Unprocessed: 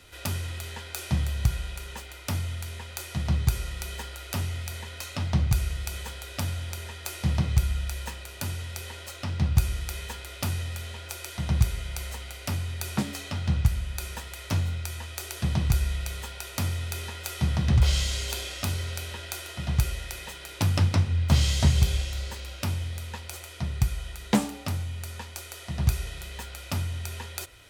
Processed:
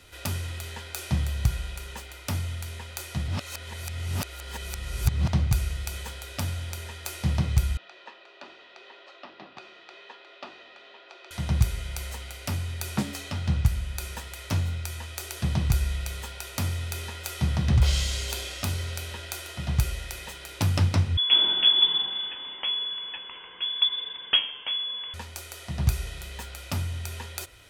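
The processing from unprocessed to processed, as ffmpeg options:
-filter_complex "[0:a]asettb=1/sr,asplit=3[a][b][c];[a]atrim=end=7.774[d];[b]atrim=start=7.77:end=11.31,asetpts=PTS-STARTPTS,afade=t=in:d=0.004:c=qsin,afade=t=out:st=3.536:d=0.004:c=qsin,highpass=f=370:w=0.5412,highpass=f=370:w=1.3066,equalizer=f=490:t=q:w=4:g=-9,equalizer=f=890:t=q:w=4:g=-5,equalizer=f=1.5k:t=q:w=4:g=-7,equalizer=f=2.2k:t=q:w=4:g=-9,equalizer=f=3.1k:t=q:w=4:g=-5,lowpass=f=3.3k:w=0.5412,lowpass=f=3.3k:w=1.3066[e];[c]atrim=start=11.306[f];[d][e]acrossfade=d=0.004:c1=hsin:c2=qsin[g];[g][f]acrossfade=d=0.004:c1=qsin:c2=hsin,asettb=1/sr,asplit=3[h][i][j];[h]atrim=end=21.174[k];[i]atrim=start=21.17:end=25.14,asetpts=PTS-STARTPTS,afade=t=in:d=0.004:c=qsin,afade=t=out:st=3.966:d=0.004:c=qsin,lowpass=f=3k:t=q:w=0.5098,lowpass=f=3k:t=q:w=0.6013,lowpass=f=3k:t=q:w=0.9,lowpass=f=3k:t=q:w=2.563,afreqshift=-3500[l];[j]atrim=start=25.136[m];[k][l]acrossfade=d=0.004:c1=hsin:c2=qsin[n];[n][m]acrossfade=d=0.004:c1=qsin:c2=hsin,asplit=3[o][p][q];[o]atrim=end=3.282[r];[p]atrim=start=3.278:end=5.282,asetpts=PTS-STARTPTS,areverse[s];[q]atrim=start=5.278[t];[r][s]acrossfade=d=0.004:c1=hsin:c2=hsin[u];[u][t]acrossfade=d=0.004:c1=hsin:c2=hsin"

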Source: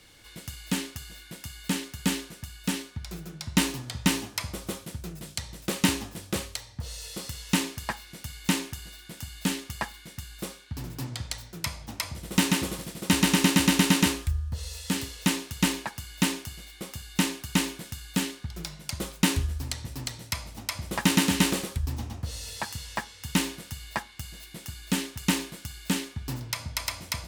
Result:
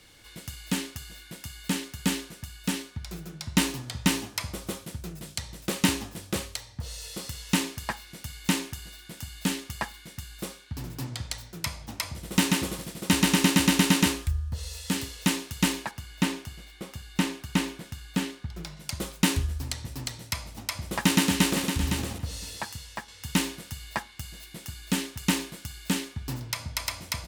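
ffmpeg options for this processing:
-filter_complex "[0:a]asettb=1/sr,asplit=3[a][b][c];[a]atrim=end=15.914[d];[b]atrim=start=15.91:end=18.77,asetpts=PTS-STARTPTS,afade=t=in:d=0.004:c=qsin,afade=t=out:st=2.856:d=0.004:c=qsin,highshelf=f=4.2k:g=-8[e];[c]atrim=start=18.766[f];[d][e]acrossfade=d=0.004:c1=hsin:c2=qsin[g];[g][f]acrossfade=d=0.004:c1=qsin:c2=hsin,asplit=2[h][i];[i]afade=t=in:st=21.05:d=0.01,afade=t=out:st=21.67:d=0.01,aecho=0:1:510|1020:0.446684|0.0446684[j];[h][j]amix=inputs=2:normalize=0,asplit=2[k][l];[k]atrim=end=23.08,asetpts=PTS-STARTPTS,afade=t=out:st=22.42:d=0.66:silence=0.473151[m];[l]atrim=start=23.08,asetpts=PTS-STARTPTS,afade=t=in:d=0.004:c=hsin:silence=0.473151[n];[m][n]concat=n=2:v=0:a=1"

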